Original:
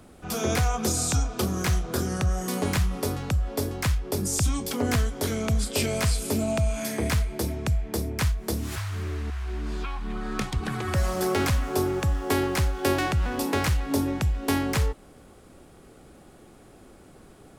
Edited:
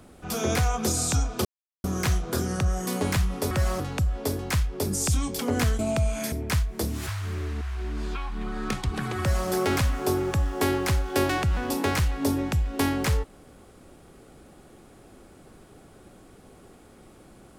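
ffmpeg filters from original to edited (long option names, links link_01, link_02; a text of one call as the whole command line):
ffmpeg -i in.wav -filter_complex "[0:a]asplit=6[link_01][link_02][link_03][link_04][link_05][link_06];[link_01]atrim=end=1.45,asetpts=PTS-STARTPTS,afade=type=out:start_time=1.446:duration=0.004:curve=hsin,apad=pad_dur=0.39[link_07];[link_02]atrim=start=1.45:end=3.122,asetpts=PTS-STARTPTS,afade=type=in:duration=0.004:curve=hsin[link_08];[link_03]atrim=start=10.888:end=11.182[link_09];[link_04]atrim=start=3.118:end=5.112[link_10];[link_05]atrim=start=6.398:end=6.932[link_11];[link_06]atrim=start=8.008[link_12];[link_07][link_08]concat=n=2:v=0:a=1[link_13];[link_13][link_09]acrossfade=duration=0.004:curve1=hsin:curve2=hsin[link_14];[link_14][link_10]acrossfade=duration=0.004:curve1=hsin:curve2=hsin[link_15];[link_15][link_11]acrossfade=duration=0.004:curve1=hsin:curve2=hsin[link_16];[link_16][link_12]acrossfade=duration=0.004:curve1=hsin:curve2=hsin" out.wav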